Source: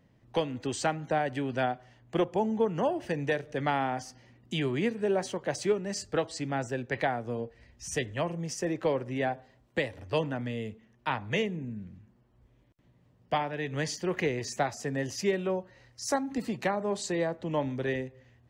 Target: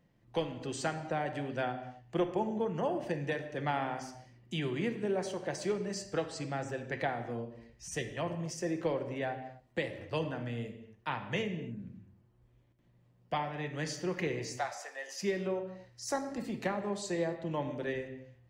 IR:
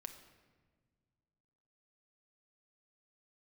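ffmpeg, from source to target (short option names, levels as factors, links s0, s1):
-filter_complex "[0:a]asettb=1/sr,asplit=3[s0][s1][s2];[s0]atrim=end=14.514[s3];[s1]atrim=start=14.51:end=15.22,asetpts=PTS-STARTPTS,afade=t=in:d=0.004:c=qsin,afade=t=out:st=0.706:d=0.004:c=qsin,highpass=f=620:w=0.5412,highpass=f=620:w=1.3066[s4];[s2]atrim=start=15.216[s5];[s3][s4]acrossfade=d=0.004:c1=hsin:c2=qsin[s6];[s6][s5]acrossfade=d=0.004:c1=qsin:c2=hsin[s7];[1:a]atrim=start_sample=2205,afade=t=out:st=0.33:d=0.01,atrim=end_sample=14994[s8];[s7][s8]afir=irnorm=-1:irlink=0"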